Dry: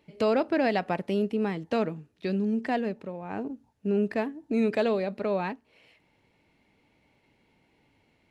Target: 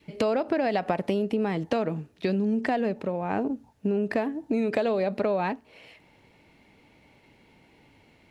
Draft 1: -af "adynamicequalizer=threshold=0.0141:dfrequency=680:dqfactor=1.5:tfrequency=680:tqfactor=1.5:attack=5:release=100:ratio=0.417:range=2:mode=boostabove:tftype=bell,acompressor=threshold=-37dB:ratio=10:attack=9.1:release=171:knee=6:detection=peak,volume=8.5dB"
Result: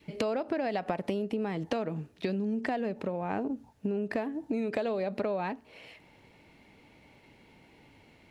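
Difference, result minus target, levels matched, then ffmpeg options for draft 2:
downward compressor: peak gain reduction +6 dB
-af "adynamicequalizer=threshold=0.0141:dfrequency=680:dqfactor=1.5:tfrequency=680:tqfactor=1.5:attack=5:release=100:ratio=0.417:range=2:mode=boostabove:tftype=bell,acompressor=threshold=-30.5dB:ratio=10:attack=9.1:release=171:knee=6:detection=peak,volume=8.5dB"

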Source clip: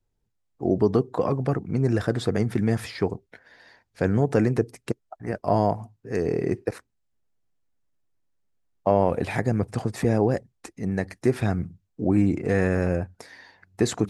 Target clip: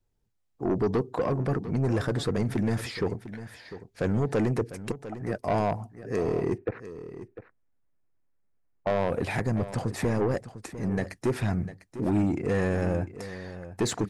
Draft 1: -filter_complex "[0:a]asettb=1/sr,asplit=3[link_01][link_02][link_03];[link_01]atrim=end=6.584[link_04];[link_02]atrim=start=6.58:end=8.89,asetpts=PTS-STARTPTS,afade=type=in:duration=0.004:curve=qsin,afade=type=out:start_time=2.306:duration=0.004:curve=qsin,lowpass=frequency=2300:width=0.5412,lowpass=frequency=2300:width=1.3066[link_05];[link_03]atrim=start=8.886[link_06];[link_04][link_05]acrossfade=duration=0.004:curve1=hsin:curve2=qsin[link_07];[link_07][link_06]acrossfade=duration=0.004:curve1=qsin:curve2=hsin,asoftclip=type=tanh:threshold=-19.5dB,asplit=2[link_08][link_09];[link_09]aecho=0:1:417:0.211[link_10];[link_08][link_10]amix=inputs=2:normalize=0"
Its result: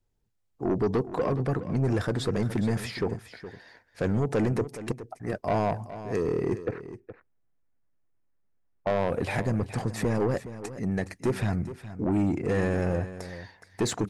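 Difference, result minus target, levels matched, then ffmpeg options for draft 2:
echo 283 ms early
-filter_complex "[0:a]asettb=1/sr,asplit=3[link_01][link_02][link_03];[link_01]atrim=end=6.584[link_04];[link_02]atrim=start=6.58:end=8.89,asetpts=PTS-STARTPTS,afade=type=in:duration=0.004:curve=qsin,afade=type=out:start_time=2.306:duration=0.004:curve=qsin,lowpass=frequency=2300:width=0.5412,lowpass=frequency=2300:width=1.3066[link_05];[link_03]atrim=start=8.886[link_06];[link_04][link_05]acrossfade=duration=0.004:curve1=hsin:curve2=qsin[link_07];[link_07][link_06]acrossfade=duration=0.004:curve1=qsin:curve2=hsin,asoftclip=type=tanh:threshold=-19.5dB,asplit=2[link_08][link_09];[link_09]aecho=0:1:700:0.211[link_10];[link_08][link_10]amix=inputs=2:normalize=0"

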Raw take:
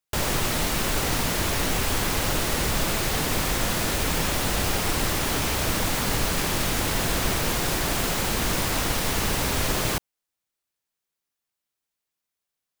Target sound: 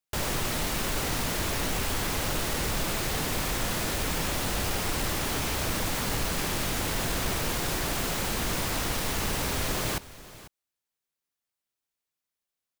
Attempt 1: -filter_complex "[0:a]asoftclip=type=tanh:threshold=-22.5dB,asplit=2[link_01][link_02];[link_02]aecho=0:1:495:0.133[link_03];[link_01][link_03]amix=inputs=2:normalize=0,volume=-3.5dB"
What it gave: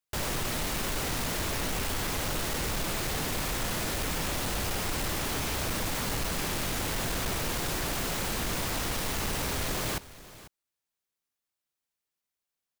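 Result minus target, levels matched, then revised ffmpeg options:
soft clipping: distortion +8 dB
-filter_complex "[0:a]asoftclip=type=tanh:threshold=-16dB,asplit=2[link_01][link_02];[link_02]aecho=0:1:495:0.133[link_03];[link_01][link_03]amix=inputs=2:normalize=0,volume=-3.5dB"

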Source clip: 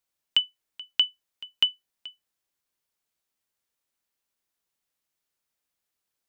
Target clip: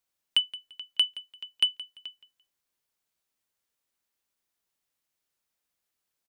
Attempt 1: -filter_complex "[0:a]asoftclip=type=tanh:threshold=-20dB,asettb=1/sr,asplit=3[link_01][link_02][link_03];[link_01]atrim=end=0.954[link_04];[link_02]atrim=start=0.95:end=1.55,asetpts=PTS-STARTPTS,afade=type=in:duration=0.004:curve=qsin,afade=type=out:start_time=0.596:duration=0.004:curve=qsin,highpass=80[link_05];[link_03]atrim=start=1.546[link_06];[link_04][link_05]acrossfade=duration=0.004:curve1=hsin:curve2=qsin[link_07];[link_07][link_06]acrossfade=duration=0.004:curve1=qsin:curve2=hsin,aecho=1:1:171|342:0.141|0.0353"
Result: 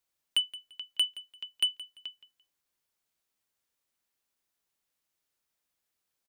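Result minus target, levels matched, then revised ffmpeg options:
soft clipping: distortion +9 dB
-filter_complex "[0:a]asoftclip=type=tanh:threshold=-12.5dB,asettb=1/sr,asplit=3[link_01][link_02][link_03];[link_01]atrim=end=0.954[link_04];[link_02]atrim=start=0.95:end=1.55,asetpts=PTS-STARTPTS,afade=type=in:duration=0.004:curve=qsin,afade=type=out:start_time=0.596:duration=0.004:curve=qsin,highpass=80[link_05];[link_03]atrim=start=1.546[link_06];[link_04][link_05]acrossfade=duration=0.004:curve1=hsin:curve2=qsin[link_07];[link_07][link_06]acrossfade=duration=0.004:curve1=qsin:curve2=hsin,aecho=1:1:171|342:0.141|0.0353"

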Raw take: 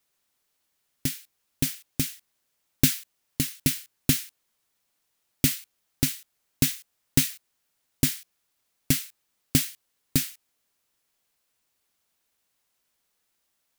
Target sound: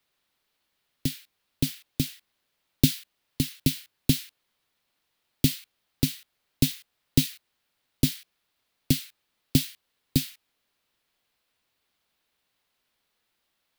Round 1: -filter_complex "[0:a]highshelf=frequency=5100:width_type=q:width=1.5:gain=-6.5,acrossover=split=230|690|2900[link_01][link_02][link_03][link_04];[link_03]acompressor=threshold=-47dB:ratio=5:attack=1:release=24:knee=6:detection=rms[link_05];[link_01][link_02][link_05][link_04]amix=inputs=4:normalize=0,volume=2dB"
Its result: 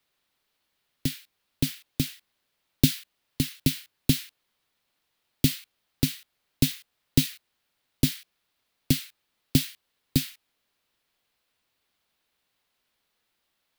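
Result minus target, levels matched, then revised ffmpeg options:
downward compressor: peak gain reduction −6.5 dB
-filter_complex "[0:a]highshelf=frequency=5100:width_type=q:width=1.5:gain=-6.5,acrossover=split=230|690|2900[link_01][link_02][link_03][link_04];[link_03]acompressor=threshold=-55dB:ratio=5:attack=1:release=24:knee=6:detection=rms[link_05];[link_01][link_02][link_05][link_04]amix=inputs=4:normalize=0,volume=2dB"

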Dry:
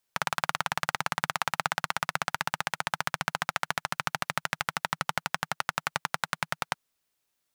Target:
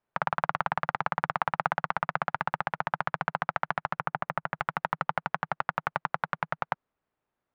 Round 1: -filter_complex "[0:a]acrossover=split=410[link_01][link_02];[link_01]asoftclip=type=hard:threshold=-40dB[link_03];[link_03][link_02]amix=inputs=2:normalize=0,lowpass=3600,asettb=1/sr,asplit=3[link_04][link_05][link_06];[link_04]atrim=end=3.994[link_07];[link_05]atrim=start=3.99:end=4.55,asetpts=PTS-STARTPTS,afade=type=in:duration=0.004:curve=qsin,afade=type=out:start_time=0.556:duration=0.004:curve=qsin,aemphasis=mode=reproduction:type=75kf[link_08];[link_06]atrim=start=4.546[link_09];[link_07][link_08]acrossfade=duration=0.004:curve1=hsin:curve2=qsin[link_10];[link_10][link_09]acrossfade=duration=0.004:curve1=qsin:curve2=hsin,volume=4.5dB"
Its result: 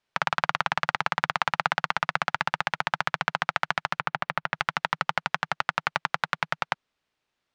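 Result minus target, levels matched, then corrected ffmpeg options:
4,000 Hz band +10.5 dB
-filter_complex "[0:a]acrossover=split=410[link_01][link_02];[link_01]asoftclip=type=hard:threshold=-40dB[link_03];[link_03][link_02]amix=inputs=2:normalize=0,lowpass=1300,asettb=1/sr,asplit=3[link_04][link_05][link_06];[link_04]atrim=end=3.994[link_07];[link_05]atrim=start=3.99:end=4.55,asetpts=PTS-STARTPTS,afade=type=in:duration=0.004:curve=qsin,afade=type=out:start_time=0.556:duration=0.004:curve=qsin,aemphasis=mode=reproduction:type=75kf[link_08];[link_06]atrim=start=4.546[link_09];[link_07][link_08]acrossfade=duration=0.004:curve1=hsin:curve2=qsin[link_10];[link_10][link_09]acrossfade=duration=0.004:curve1=qsin:curve2=hsin,volume=4.5dB"

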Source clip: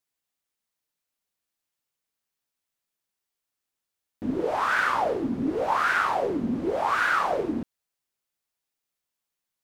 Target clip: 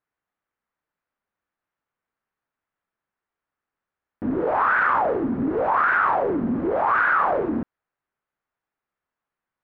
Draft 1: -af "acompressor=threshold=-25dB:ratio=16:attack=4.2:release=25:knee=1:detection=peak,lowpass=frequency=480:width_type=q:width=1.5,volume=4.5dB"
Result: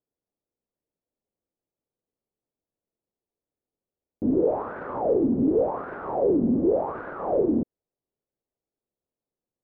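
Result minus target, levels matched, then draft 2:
2,000 Hz band −19.0 dB
-af "acompressor=threshold=-25dB:ratio=16:attack=4.2:release=25:knee=1:detection=peak,lowpass=frequency=1500:width_type=q:width=1.5,volume=4.5dB"

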